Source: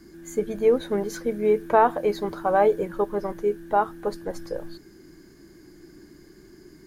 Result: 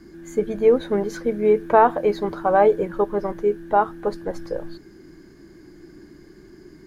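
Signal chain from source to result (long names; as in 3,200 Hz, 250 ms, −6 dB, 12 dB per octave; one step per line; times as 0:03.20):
high-shelf EQ 6,000 Hz −11.5 dB
level +3.5 dB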